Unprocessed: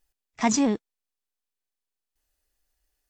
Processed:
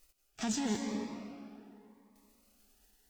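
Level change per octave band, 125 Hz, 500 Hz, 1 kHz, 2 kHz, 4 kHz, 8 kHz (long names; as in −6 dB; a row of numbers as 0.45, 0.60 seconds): −6.5, −11.0, −13.0, −10.0, −6.0, −10.0 decibels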